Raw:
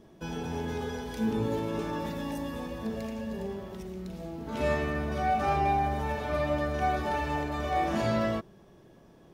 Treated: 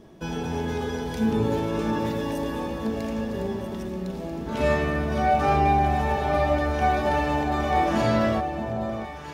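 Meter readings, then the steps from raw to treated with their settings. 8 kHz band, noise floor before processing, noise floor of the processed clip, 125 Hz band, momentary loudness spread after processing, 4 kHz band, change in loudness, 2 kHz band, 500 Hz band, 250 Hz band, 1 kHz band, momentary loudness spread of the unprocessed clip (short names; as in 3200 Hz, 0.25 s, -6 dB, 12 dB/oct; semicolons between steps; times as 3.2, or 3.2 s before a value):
+5.0 dB, -56 dBFS, -36 dBFS, +6.5 dB, 10 LU, +5.5 dB, +6.0 dB, +6.0 dB, +6.5 dB, +6.5 dB, +6.5 dB, 11 LU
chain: high shelf 11000 Hz -3.5 dB; echo with dull and thin repeats by turns 0.645 s, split 990 Hz, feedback 63%, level -7 dB; gain +5.5 dB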